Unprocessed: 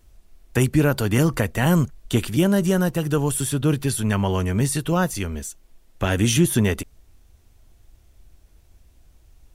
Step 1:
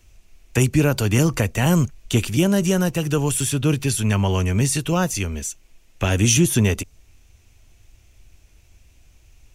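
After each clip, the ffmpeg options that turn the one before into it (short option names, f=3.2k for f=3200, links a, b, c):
-filter_complex "[0:a]equalizer=f=100:t=o:w=0.67:g=4,equalizer=f=2.5k:t=o:w=0.67:g=11,equalizer=f=6.3k:t=o:w=0.67:g=8,acrossover=split=320|1500|3300[a][b][c][d];[c]acompressor=threshold=-38dB:ratio=6[e];[a][b][e][d]amix=inputs=4:normalize=0"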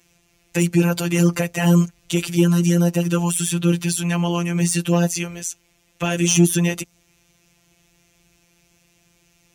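-af "afftfilt=real='hypot(re,im)*cos(PI*b)':imag='0':win_size=1024:overlap=0.75,acontrast=58,highpass=77,volume=-1.5dB"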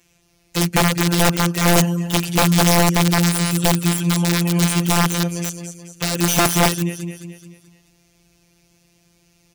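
-filter_complex "[0:a]asplit=2[a][b];[b]aecho=0:1:215|430|645|860|1075:0.355|0.167|0.0784|0.0368|0.0173[c];[a][c]amix=inputs=2:normalize=0,aeval=exprs='(mod(2.82*val(0)+1,2)-1)/2.82':c=same"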